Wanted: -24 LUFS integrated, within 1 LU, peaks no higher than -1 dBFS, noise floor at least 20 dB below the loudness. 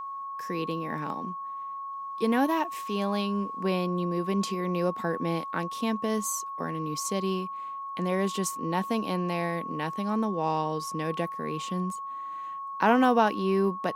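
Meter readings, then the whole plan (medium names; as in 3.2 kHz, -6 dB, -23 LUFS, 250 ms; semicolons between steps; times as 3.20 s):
steady tone 1.1 kHz; tone level -34 dBFS; loudness -29.0 LUFS; peak level -9.0 dBFS; loudness target -24.0 LUFS
-> band-stop 1.1 kHz, Q 30; trim +5 dB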